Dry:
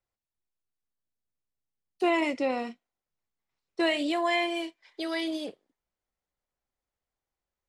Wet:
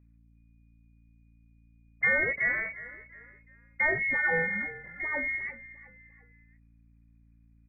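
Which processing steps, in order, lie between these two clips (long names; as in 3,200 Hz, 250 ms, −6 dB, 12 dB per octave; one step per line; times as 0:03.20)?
voice inversion scrambler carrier 2,600 Hz
mains hum 60 Hz, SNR 26 dB
on a send: echo with shifted repeats 352 ms, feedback 40%, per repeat −37 Hz, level −16.5 dB
on the sum: pitch shifter −1 semitone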